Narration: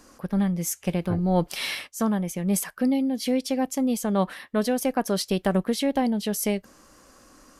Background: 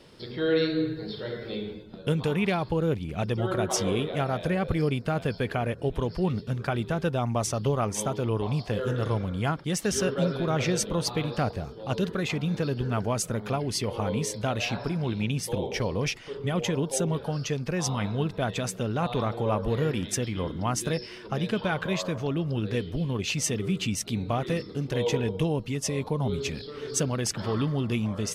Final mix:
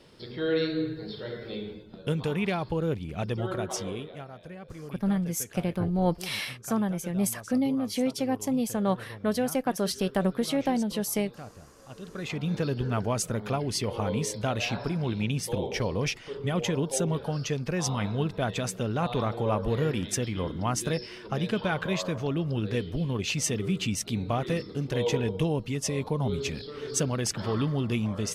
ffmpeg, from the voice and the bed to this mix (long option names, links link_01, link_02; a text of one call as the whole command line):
ffmpeg -i stem1.wav -i stem2.wav -filter_complex "[0:a]adelay=4700,volume=-3dB[link_01];[1:a]volume=13.5dB,afade=type=out:start_time=3.35:duration=0.94:silence=0.199526,afade=type=in:start_time=12.01:duration=0.53:silence=0.158489[link_02];[link_01][link_02]amix=inputs=2:normalize=0" out.wav